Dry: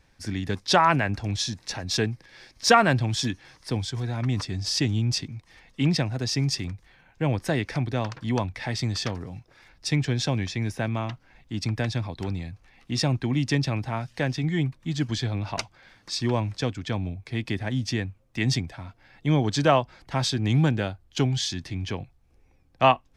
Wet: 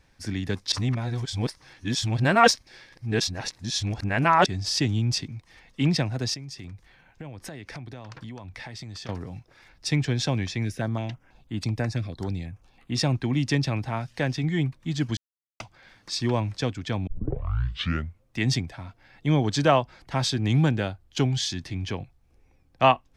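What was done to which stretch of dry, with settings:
0:00.72–0:04.46: reverse
0:06.34–0:09.09: downward compressor 12 to 1, threshold −35 dBFS
0:10.65–0:12.96: notch on a step sequencer 6.1 Hz 910–5,500 Hz
0:15.17–0:15.60: silence
0:17.07: tape start 1.17 s

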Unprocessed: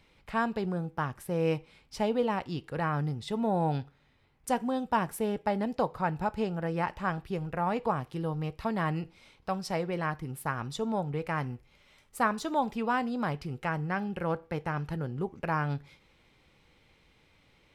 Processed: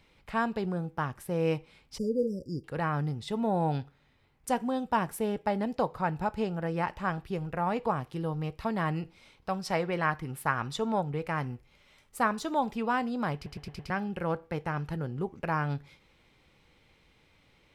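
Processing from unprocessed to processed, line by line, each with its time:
0:01.98–0:02.64: linear-phase brick-wall band-stop 580–4,700 Hz
0:09.66–0:11.02: parametric band 1,600 Hz +5.5 dB 2.5 octaves
0:13.35: stutter in place 0.11 s, 5 plays

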